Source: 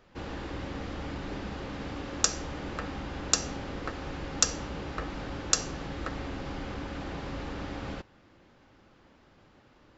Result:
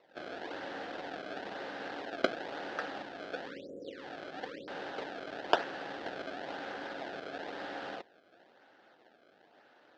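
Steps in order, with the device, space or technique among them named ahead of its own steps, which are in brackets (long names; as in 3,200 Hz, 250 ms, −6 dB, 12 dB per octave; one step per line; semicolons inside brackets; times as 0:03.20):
0:03.02–0:04.68: elliptic low-pass filter 540 Hz, stop band 40 dB
circuit-bent sampling toy (sample-and-hold swept by an LFO 27×, swing 160% 1 Hz; loudspeaker in its box 460–4,300 Hz, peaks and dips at 710 Hz +5 dB, 1,100 Hz −8 dB, 1,600 Hz +6 dB, 2,300 Hz −5 dB)
level +1 dB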